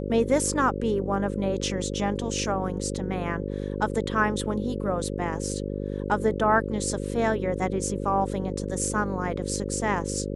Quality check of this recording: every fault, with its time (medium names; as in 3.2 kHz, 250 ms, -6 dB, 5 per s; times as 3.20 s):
buzz 50 Hz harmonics 11 -31 dBFS